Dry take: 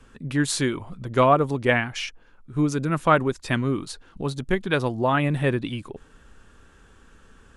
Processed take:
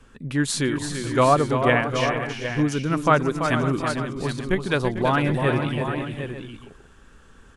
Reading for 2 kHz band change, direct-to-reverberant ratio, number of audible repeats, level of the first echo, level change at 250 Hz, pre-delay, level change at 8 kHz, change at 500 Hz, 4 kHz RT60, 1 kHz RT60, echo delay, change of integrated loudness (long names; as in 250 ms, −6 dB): +1.5 dB, no reverb audible, 6, −7.5 dB, +1.5 dB, no reverb audible, +1.5 dB, +1.5 dB, no reverb audible, no reverb audible, 336 ms, +1.0 dB